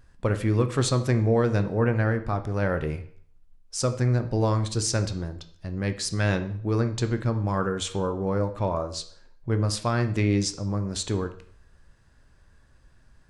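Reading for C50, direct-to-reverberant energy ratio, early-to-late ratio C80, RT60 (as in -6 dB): 12.5 dB, 8.0 dB, 16.0 dB, 0.55 s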